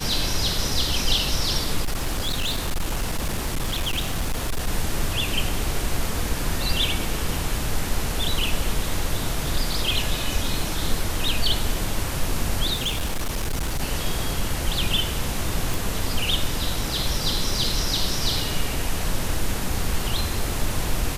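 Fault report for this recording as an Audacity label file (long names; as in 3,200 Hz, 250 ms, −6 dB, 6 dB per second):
1.820000	4.680000	clipping −20 dBFS
12.730000	13.810000	clipping −21 dBFS
15.740000	15.740000	click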